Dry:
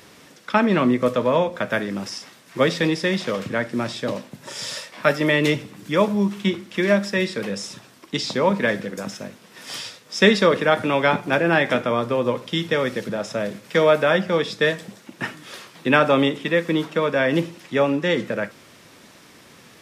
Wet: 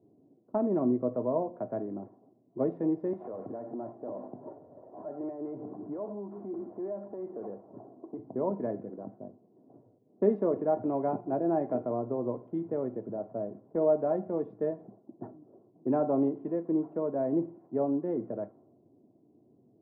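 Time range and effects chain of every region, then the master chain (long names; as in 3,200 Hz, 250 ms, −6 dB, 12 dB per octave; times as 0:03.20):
0:03.13–0:08.19: downward compressor 10 to 1, threshold −33 dBFS + mid-hump overdrive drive 25 dB, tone 1,600 Hz, clips at −17 dBFS
whole clip: Chebyshev band-pass filter 110–790 Hz, order 3; low-pass that shuts in the quiet parts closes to 340 Hz, open at −19.5 dBFS; comb filter 2.9 ms, depth 47%; level −8.5 dB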